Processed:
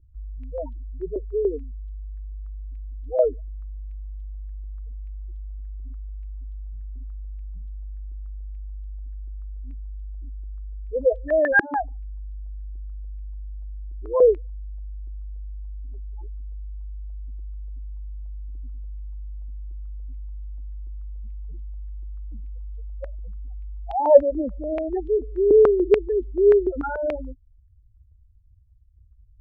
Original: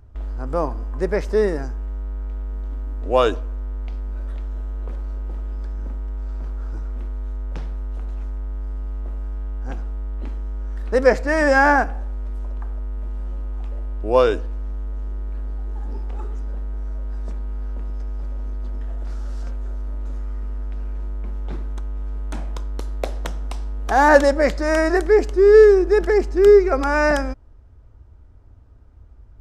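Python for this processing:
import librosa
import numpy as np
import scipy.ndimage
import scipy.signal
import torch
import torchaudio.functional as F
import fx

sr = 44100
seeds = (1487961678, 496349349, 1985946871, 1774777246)

y = fx.spec_topn(x, sr, count=4)
y = fx.filter_held_lowpass(y, sr, hz=6.9, low_hz=340.0, high_hz=3300.0)
y = F.gain(torch.from_numpy(y), -7.5).numpy()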